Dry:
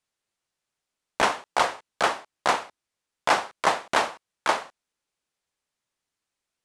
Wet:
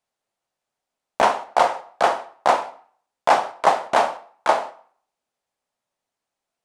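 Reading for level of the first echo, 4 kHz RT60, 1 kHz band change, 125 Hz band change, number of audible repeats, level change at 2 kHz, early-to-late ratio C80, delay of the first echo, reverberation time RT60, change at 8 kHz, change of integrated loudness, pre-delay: no echo, 0.40 s, +6.0 dB, no reading, no echo, 0.0 dB, 18.5 dB, no echo, 0.50 s, -2.0 dB, +4.5 dB, 7 ms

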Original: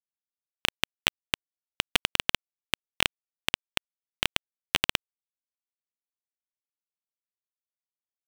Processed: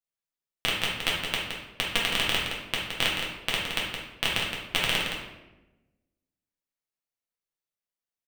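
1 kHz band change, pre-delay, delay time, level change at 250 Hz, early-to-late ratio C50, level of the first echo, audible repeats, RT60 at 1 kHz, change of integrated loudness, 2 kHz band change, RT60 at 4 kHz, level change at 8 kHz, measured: +2.5 dB, 6 ms, 168 ms, +3.0 dB, 0.5 dB, -7.0 dB, 1, 0.90 s, +1.5 dB, +2.5 dB, 0.70 s, +0.5 dB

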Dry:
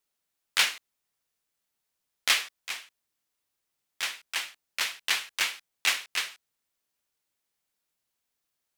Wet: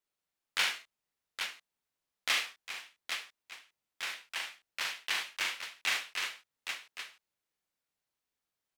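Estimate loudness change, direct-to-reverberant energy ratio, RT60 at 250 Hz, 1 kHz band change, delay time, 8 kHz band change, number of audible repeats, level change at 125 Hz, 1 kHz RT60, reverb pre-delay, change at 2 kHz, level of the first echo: -6.5 dB, no reverb, no reverb, -3.5 dB, 41 ms, -8.0 dB, 3, no reading, no reverb, no reverb, -4.0 dB, -4.5 dB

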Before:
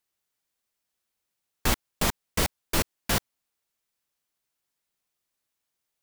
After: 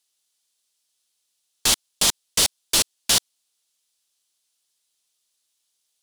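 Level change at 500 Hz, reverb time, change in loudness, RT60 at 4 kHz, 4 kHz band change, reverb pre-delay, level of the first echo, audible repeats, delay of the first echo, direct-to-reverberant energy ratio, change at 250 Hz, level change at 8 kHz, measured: -1.5 dB, no reverb, +8.0 dB, no reverb, +12.0 dB, no reverb, no echo, no echo, no echo, no reverb, -4.0 dB, +12.5 dB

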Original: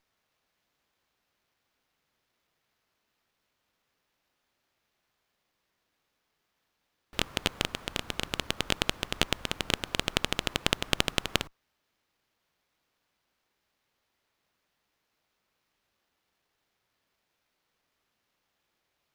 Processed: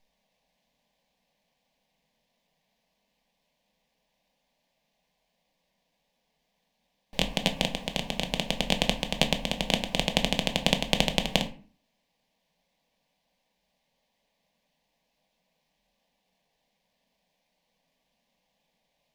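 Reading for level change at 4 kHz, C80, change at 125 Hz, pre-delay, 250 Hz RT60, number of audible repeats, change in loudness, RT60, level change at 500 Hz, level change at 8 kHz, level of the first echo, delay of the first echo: +3.0 dB, 19.0 dB, +4.5 dB, 5 ms, 0.55 s, no echo, +3.0 dB, 0.45 s, +5.5 dB, +1.0 dB, no echo, no echo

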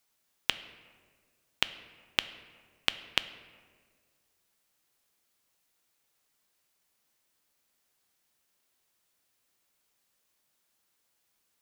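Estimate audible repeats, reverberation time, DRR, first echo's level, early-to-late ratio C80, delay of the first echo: no echo, 1.7 s, 12.0 dB, no echo, 15.5 dB, no echo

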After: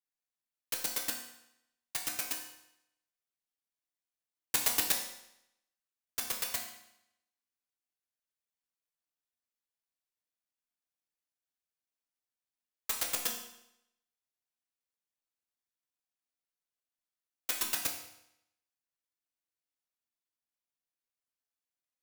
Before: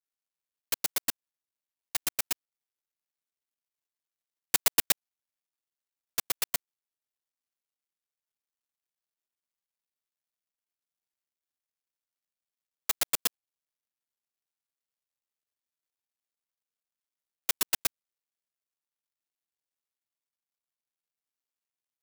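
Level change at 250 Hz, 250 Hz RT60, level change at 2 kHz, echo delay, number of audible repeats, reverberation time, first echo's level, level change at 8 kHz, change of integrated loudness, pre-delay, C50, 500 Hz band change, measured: -2.0 dB, 0.80 s, -3.0 dB, no echo, no echo, 0.80 s, no echo, -3.5 dB, -4.0 dB, 4 ms, 6.0 dB, -3.0 dB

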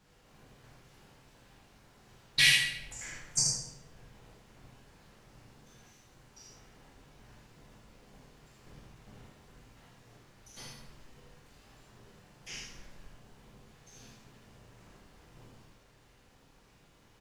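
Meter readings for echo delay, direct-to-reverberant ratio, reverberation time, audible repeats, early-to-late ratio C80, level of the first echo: 78 ms, -4.5 dB, 0.90 s, 1, 3.5 dB, -5.5 dB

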